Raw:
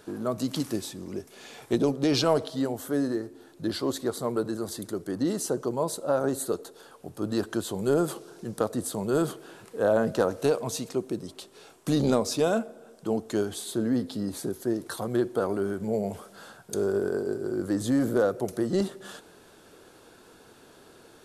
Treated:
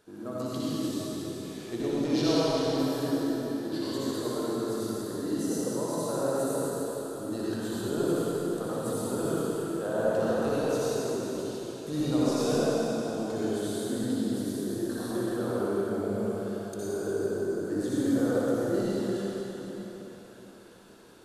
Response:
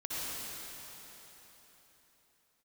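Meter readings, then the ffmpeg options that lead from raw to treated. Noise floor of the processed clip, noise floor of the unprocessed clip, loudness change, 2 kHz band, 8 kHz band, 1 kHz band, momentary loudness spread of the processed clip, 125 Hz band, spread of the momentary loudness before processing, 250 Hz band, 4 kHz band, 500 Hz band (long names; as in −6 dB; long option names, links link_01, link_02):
−47 dBFS, −54 dBFS, −1.5 dB, −2.0 dB, −2.0 dB, −1.5 dB, 9 LU, −1.5 dB, 15 LU, −0.5 dB, −1.5 dB, −1.5 dB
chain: -filter_complex "[1:a]atrim=start_sample=2205[link_01];[0:a][link_01]afir=irnorm=-1:irlink=0,volume=-6.5dB"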